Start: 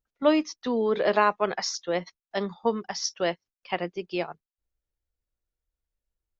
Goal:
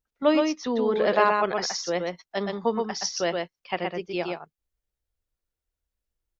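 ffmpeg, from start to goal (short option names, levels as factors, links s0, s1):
-af "aecho=1:1:122:0.668"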